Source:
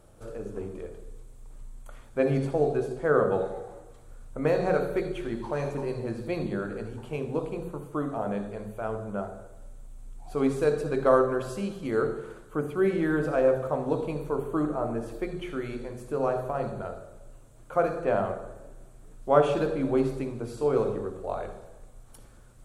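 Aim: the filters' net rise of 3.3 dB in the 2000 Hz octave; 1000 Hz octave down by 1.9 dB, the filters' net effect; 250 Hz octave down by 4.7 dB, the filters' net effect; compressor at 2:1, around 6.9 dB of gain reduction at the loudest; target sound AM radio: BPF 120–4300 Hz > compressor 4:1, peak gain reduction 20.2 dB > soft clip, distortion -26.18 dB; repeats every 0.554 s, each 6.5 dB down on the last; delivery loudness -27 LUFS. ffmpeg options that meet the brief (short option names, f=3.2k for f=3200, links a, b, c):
-af "equalizer=f=250:t=o:g=-6,equalizer=f=1k:t=o:g=-4.5,equalizer=f=2k:t=o:g=7,acompressor=threshold=-29dB:ratio=2,highpass=120,lowpass=4.3k,aecho=1:1:554|1108|1662|2216|2770|3324:0.473|0.222|0.105|0.0491|0.0231|0.0109,acompressor=threshold=-47dB:ratio=4,asoftclip=threshold=-34.5dB,volume=21.5dB"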